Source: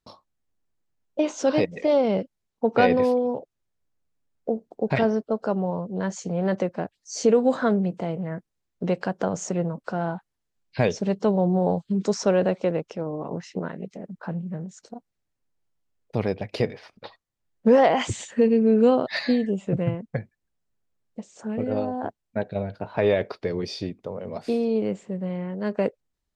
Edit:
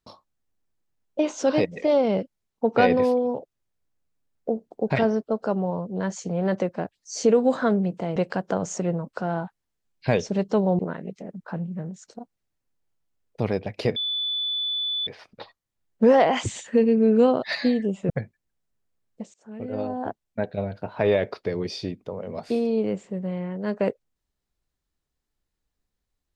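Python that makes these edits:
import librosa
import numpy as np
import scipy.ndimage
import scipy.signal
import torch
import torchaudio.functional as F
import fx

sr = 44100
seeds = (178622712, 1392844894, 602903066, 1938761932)

y = fx.edit(x, sr, fx.cut(start_s=8.16, length_s=0.71),
    fx.cut(start_s=11.5, length_s=2.04),
    fx.insert_tone(at_s=16.71, length_s=1.11, hz=3480.0, db=-24.0),
    fx.cut(start_s=19.74, length_s=0.34),
    fx.fade_in_from(start_s=21.32, length_s=0.68, floor_db=-23.0), tone=tone)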